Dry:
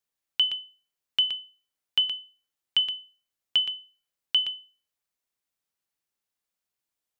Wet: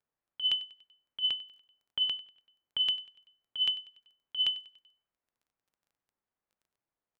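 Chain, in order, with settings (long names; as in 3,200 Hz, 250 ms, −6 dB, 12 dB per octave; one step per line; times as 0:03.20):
low-pass that shuts in the quiet parts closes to 1,400 Hz, open at −24.5 dBFS
0:01.29–0:02.86: high-shelf EQ 3,700 Hz −9 dB
compressor whose output falls as the input rises −27 dBFS, ratio −0.5
surface crackle 12 per second −59 dBFS
repeating echo 96 ms, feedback 52%, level −20 dB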